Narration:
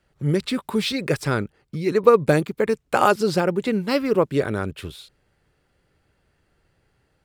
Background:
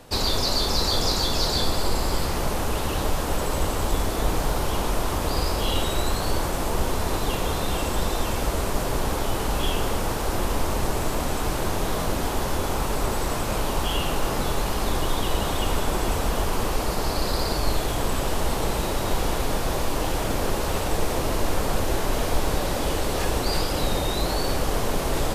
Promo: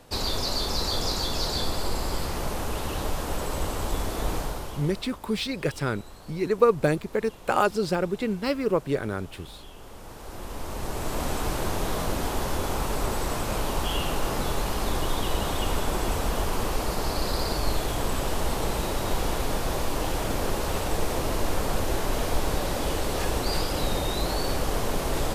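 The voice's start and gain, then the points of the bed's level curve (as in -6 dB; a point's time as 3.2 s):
4.55 s, -5.0 dB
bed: 4.36 s -4.5 dB
5.2 s -21.5 dB
9.74 s -21.5 dB
11.24 s -2.5 dB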